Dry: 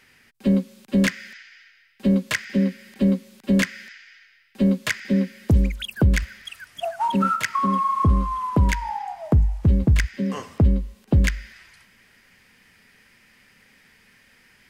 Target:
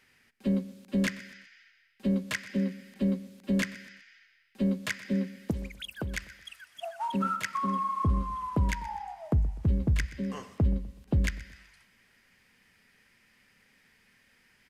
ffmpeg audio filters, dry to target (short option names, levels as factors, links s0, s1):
-filter_complex "[0:a]aecho=1:1:125|250|375:0.126|0.0504|0.0201,aresample=32000,aresample=44100,asettb=1/sr,asplit=3[s0][s1][s2];[s0]atrim=end=5.514[s3];[s1]atrim=start=5.51:end=7.14,asetpts=PTS-STARTPTS,afade=t=in:d=0.004:c=qsin,afade=t=out:st=1.626:d=0.004:c=qsin,lowshelf=f=330:g=-11.5[s4];[s2]atrim=start=7.136[s5];[s3][s4]acrossfade=d=0.004:c1=hsin:c2=qsin[s6];[s6][s5]acrossfade=d=0.004:c1=qsin:c2=hsin,volume=0.376"